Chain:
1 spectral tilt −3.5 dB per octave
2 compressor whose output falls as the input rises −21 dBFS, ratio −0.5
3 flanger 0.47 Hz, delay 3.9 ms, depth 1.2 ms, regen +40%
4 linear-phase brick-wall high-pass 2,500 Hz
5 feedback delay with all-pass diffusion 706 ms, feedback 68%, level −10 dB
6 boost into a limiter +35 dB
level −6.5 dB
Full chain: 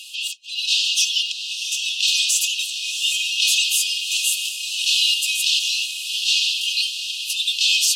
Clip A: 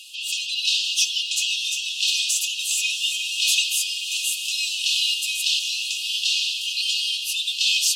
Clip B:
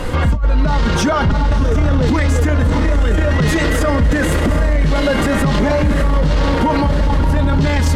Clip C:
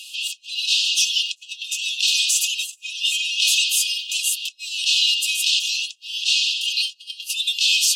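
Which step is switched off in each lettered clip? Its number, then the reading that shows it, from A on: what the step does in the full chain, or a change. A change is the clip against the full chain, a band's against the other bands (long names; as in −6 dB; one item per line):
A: 2, change in crest factor +2.5 dB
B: 4, change in crest factor −8.5 dB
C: 5, change in momentary loudness spread +3 LU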